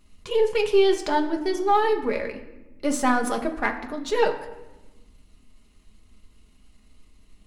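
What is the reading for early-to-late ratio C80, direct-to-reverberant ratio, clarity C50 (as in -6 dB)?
13.0 dB, 2.5 dB, 11.0 dB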